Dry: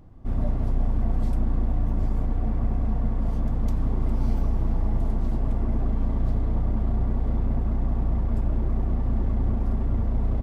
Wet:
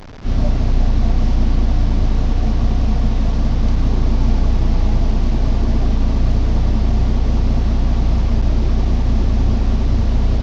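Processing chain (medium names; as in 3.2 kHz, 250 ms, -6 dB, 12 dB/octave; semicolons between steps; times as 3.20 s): one-bit delta coder 32 kbps, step -37.5 dBFS; trim +8.5 dB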